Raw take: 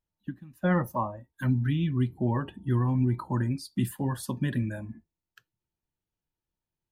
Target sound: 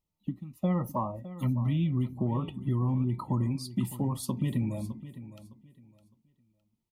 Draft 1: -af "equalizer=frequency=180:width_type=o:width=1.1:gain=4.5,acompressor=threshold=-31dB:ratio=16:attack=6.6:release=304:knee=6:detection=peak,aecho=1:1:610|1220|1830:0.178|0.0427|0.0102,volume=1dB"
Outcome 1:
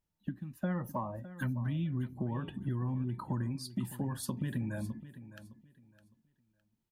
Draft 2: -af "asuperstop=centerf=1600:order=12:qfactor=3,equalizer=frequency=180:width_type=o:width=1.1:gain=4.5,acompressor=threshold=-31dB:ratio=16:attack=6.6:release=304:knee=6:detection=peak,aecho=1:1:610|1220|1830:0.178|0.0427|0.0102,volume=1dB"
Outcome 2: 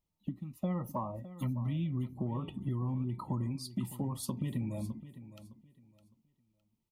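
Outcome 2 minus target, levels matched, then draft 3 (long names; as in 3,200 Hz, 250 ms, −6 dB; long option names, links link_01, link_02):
downward compressor: peak gain reduction +6.5 dB
-af "asuperstop=centerf=1600:order=12:qfactor=3,equalizer=frequency=180:width_type=o:width=1.1:gain=4.5,acompressor=threshold=-24dB:ratio=16:attack=6.6:release=304:knee=6:detection=peak,aecho=1:1:610|1220|1830:0.178|0.0427|0.0102,volume=1dB"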